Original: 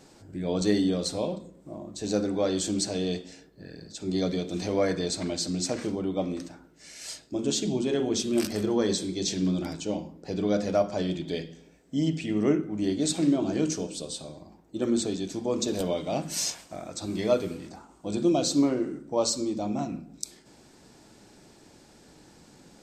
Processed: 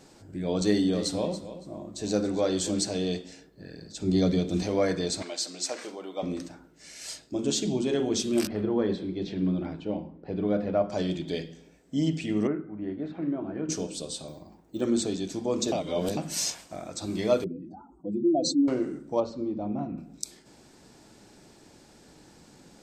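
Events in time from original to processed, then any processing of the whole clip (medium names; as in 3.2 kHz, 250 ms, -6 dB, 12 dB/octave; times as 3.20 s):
0.65–2.83 s: feedback delay 281 ms, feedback 21%, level -13 dB
3.96–4.63 s: bass shelf 230 Hz +9.5 dB
5.22–6.23 s: high-pass 580 Hz
8.47–10.90 s: distance through air 430 m
12.47–13.69 s: four-pole ladder low-pass 2.1 kHz, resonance 30%
14.28–14.81 s: careless resampling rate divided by 2×, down none, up hold
15.72–16.17 s: reverse
17.44–18.68 s: spectral contrast enhancement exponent 2.3
19.20–19.98 s: tape spacing loss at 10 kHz 45 dB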